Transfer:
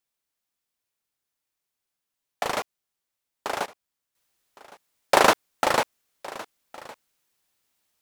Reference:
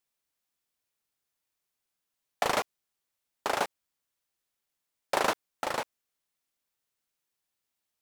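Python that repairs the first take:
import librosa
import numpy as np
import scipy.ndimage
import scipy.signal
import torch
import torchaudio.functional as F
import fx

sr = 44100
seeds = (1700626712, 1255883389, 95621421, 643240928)

y = fx.fix_echo_inverse(x, sr, delay_ms=1112, level_db=-20.0)
y = fx.gain(y, sr, db=fx.steps((0.0, 0.0), (4.15, -10.0)))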